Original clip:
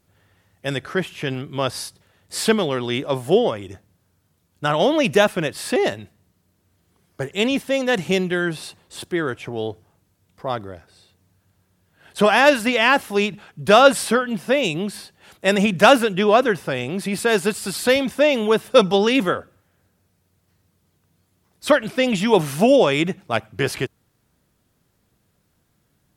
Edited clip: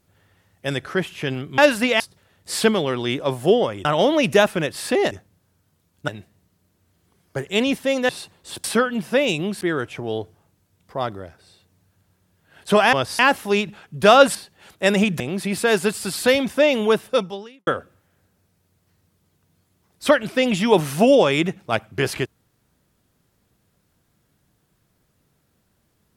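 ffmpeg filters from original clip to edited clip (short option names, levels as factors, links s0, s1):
-filter_complex "[0:a]asplit=14[s0][s1][s2][s3][s4][s5][s6][s7][s8][s9][s10][s11][s12][s13];[s0]atrim=end=1.582[s14];[s1]atrim=start=12.418:end=12.842[s15];[s2]atrim=start=1.838:end=3.692[s16];[s3]atrim=start=4.658:end=5.922[s17];[s4]atrim=start=3.688:end=4.662[s18];[s5]atrim=start=5.918:end=7.932[s19];[s6]atrim=start=8.548:end=9.102[s20];[s7]atrim=start=13.998:end=14.972[s21];[s8]atrim=start=9.098:end=12.422[s22];[s9]atrim=start=1.578:end=1.842[s23];[s10]atrim=start=12.838:end=14.002[s24];[s11]atrim=start=14.968:end=15.822[s25];[s12]atrim=start=16.808:end=19.28,asetpts=PTS-STARTPTS,afade=t=out:st=1.732:d=0.74:c=qua[s26];[s13]atrim=start=19.28,asetpts=PTS-STARTPTS,afade=t=in:d=0.004:c=hsin[s27];[s14][s15]acrossfade=d=0.004:c1=hsin:c2=hsin[s28];[s28][s16]acrossfade=d=0.004:c1=hsin:c2=hsin[s29];[s29][s17]acrossfade=d=0.004:c1=hsin:c2=hsin[s30];[s30][s18]acrossfade=d=0.004:c1=hsin:c2=hsin[s31];[s31][s19]acrossfade=d=0.004:c1=hsin:c2=hsin[s32];[s32][s20]acrossfade=d=0.004:c1=hsin:c2=hsin[s33];[s33][s21]acrossfade=d=0.004:c1=hsin:c2=hsin[s34];[s34][s22]acrossfade=d=0.004:c1=hsin:c2=hsin[s35];[s35][s23]acrossfade=d=0.004:c1=hsin:c2=hsin[s36];[s36][s24]acrossfade=d=0.004:c1=hsin:c2=hsin[s37];[s37][s25]acrossfade=d=0.004:c1=hsin:c2=hsin[s38];[s26][s27]concat=n=2:v=0:a=1[s39];[s38][s39]acrossfade=d=0.004:c1=hsin:c2=hsin"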